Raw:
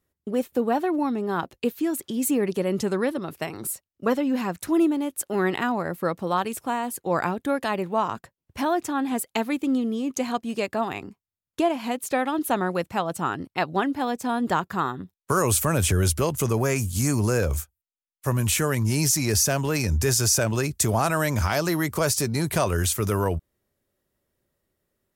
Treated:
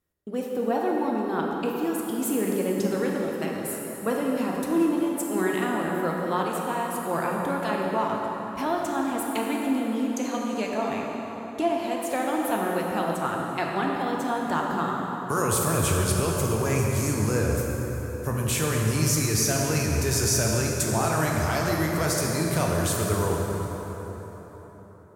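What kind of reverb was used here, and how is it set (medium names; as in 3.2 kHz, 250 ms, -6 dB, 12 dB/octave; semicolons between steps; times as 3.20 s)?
plate-style reverb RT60 4.6 s, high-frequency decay 0.6×, DRR -2 dB; trim -5 dB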